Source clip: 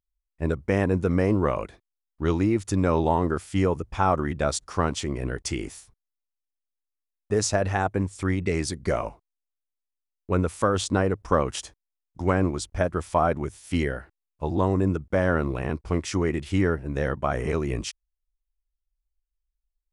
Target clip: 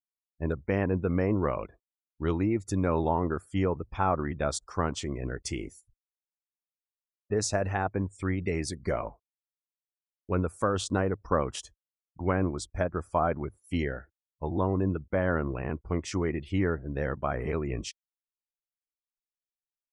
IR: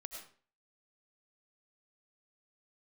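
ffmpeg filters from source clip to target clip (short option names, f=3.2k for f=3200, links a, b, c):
-af "afftdn=nr=34:nf=-44,volume=-4.5dB"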